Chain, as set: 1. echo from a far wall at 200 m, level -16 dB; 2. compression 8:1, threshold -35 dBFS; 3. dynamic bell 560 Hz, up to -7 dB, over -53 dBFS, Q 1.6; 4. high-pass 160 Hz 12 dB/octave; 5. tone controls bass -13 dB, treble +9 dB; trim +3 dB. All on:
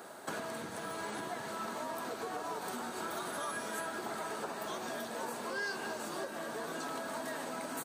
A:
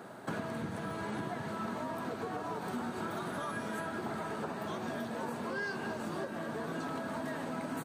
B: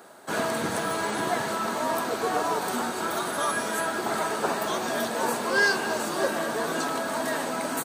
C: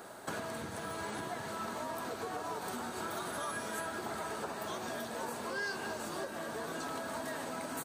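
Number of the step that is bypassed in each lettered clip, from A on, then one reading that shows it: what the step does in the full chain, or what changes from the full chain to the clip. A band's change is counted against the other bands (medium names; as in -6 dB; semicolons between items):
5, 125 Hz band +11.0 dB; 2, mean gain reduction 10.0 dB; 4, 125 Hz band +4.0 dB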